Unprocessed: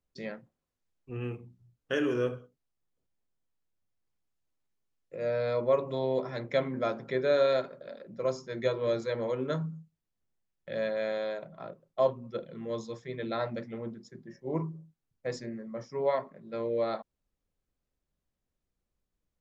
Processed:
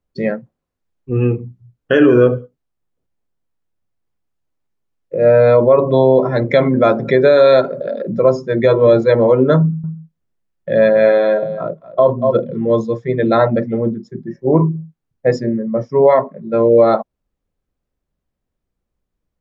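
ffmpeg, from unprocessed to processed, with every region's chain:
-filter_complex "[0:a]asettb=1/sr,asplit=3[s0][s1][s2];[s0]atrim=end=6.424[s3];[s1]atrim=start=6.42:end=8.22,asetpts=PTS-STARTPTS,afade=t=in:d=0.004:c=qsin,afade=t=out:st=1.796:d=0.004:c=qsin,acompressor=mode=upward:threshold=0.02:ratio=2.5:attack=3.2:release=140:knee=2.83:detection=peak,aemphasis=mode=production:type=cd[s4];[s2]atrim=start=8.216[s5];[s3][s4]acrossfade=d=0.004:c1=hsin:c2=qsin[s6];[s6][s5]acrossfade=d=0.004:c1=qsin:c2=hsin,asettb=1/sr,asplit=3[s7][s8][s9];[s7]atrim=end=9.604[s10];[s8]atrim=start=9.6:end=12.57,asetpts=PTS-STARTPTS,afade=t=in:d=0.004:c=qsin,afade=t=out:st=2.966:d=0.004:c=qsin,bandreject=f=800:w=17,aecho=1:1:237:0.299,atrim=end_sample=130977[s11];[s9]atrim=start=12.566[s12];[s10][s11]acrossfade=d=0.004:c1=hsin:c2=qsin[s13];[s13][s12]acrossfade=d=0.004:c1=qsin:c2=hsin,afftdn=nr=13:nf=-42,highshelf=f=2600:g=-9.5,alimiter=level_in=12.6:limit=0.891:release=50:level=0:latency=1,volume=0.891"

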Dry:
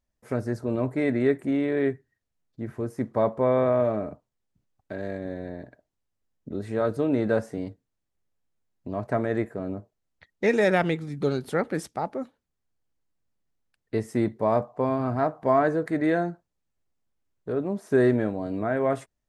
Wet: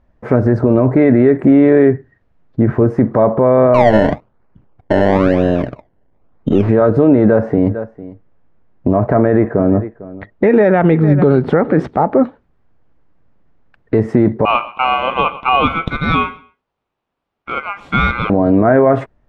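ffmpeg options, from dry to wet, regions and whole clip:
-filter_complex "[0:a]asettb=1/sr,asplit=3[s0][s1][s2];[s0]atrim=end=3.744[s3];[s1]atrim=start=3.74:end=6.69,asetpts=PTS-STARTPTS,afade=t=in:d=0.004:c=qsin,afade=t=out:st=2.946:d=0.004:c=qsin,aeval=exprs='if(lt(val(0),0),0.708*val(0),val(0))':c=same,acrusher=samples=25:mix=1:aa=0.000001:lfo=1:lforange=25:lforate=1[s4];[s2]atrim=start=6.686[s5];[s3][s4]acrossfade=d=0.004:c1=hsin:c2=qsin[s6];[s6][s5]acrossfade=d=0.004:c1=qsin:c2=hsin,asettb=1/sr,asplit=3[s7][s8][s9];[s7]atrim=end=7.244[s10];[s8]atrim=start=7.24:end=12.21,asetpts=PTS-STARTPTS,afade=t=in:d=0.004:c=qsin,afade=t=out:st=4.966:d=0.004:c=qsin,lowpass=f=3400:p=1,aecho=1:1:450:0.0631,atrim=end_sample=219177[s11];[s9]atrim=start=12.206[s12];[s10][s11]acrossfade=d=0.004:c1=hsin:c2=qsin[s13];[s13][s12]acrossfade=d=0.004:c1=qsin:c2=hsin,asettb=1/sr,asplit=3[s14][s15][s16];[s14]atrim=end=14.454[s17];[s15]atrim=start=14.45:end=18.3,asetpts=PTS-STARTPTS,afade=t=in:d=0.004:c=qsin,afade=t=out:st=3.846:d=0.004:c=qsin,highpass=910,aeval=exprs='val(0)*sin(2*PI*1800*n/s)':c=same,aecho=1:1:123|246:0.0944|0.0217,atrim=end_sample=169785[s18];[s16]atrim=start=18.296[s19];[s17][s18]acrossfade=d=0.004:c1=hsin:c2=qsin[s20];[s20][s19]acrossfade=d=0.004:c1=qsin:c2=hsin,acompressor=threshold=0.0447:ratio=2.5,lowpass=1500,alimiter=level_in=20:limit=0.891:release=50:level=0:latency=1,volume=0.891"

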